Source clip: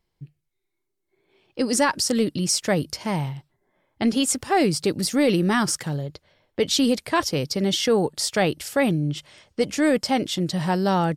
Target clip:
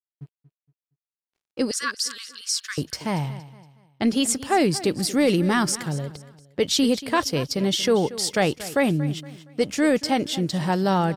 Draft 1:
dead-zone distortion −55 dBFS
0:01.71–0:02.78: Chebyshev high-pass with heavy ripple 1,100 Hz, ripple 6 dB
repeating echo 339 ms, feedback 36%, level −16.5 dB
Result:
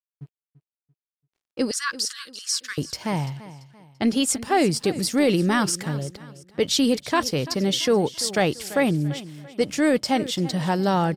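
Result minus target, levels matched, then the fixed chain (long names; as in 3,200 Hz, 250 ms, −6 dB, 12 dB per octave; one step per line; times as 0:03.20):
echo 106 ms late
dead-zone distortion −55 dBFS
0:01.71–0:02.78: Chebyshev high-pass with heavy ripple 1,100 Hz, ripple 6 dB
repeating echo 233 ms, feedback 36%, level −16.5 dB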